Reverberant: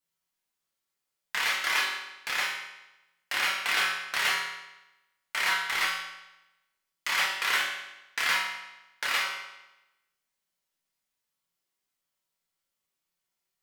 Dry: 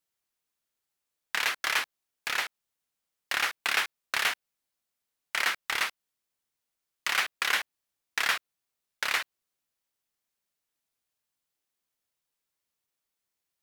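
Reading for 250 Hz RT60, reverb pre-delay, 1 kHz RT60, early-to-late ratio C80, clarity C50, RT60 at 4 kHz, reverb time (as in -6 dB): 0.95 s, 5 ms, 0.95 s, 5.5 dB, 2.5 dB, 0.90 s, 0.95 s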